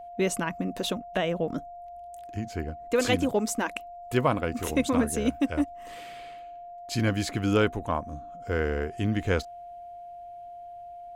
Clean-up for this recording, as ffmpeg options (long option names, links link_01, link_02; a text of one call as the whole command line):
ffmpeg -i in.wav -af "bandreject=frequency=700:width=30" out.wav